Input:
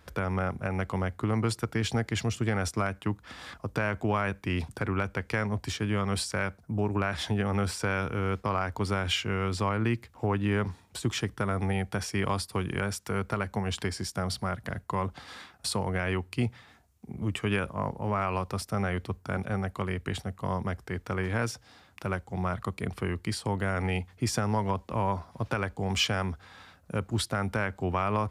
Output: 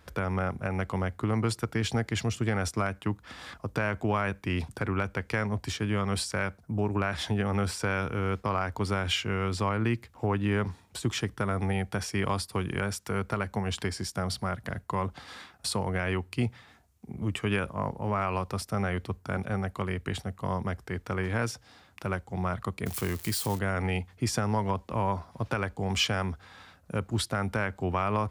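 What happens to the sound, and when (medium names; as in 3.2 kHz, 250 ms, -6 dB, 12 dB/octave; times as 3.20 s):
22.86–23.59 s: zero-crossing glitches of -27.5 dBFS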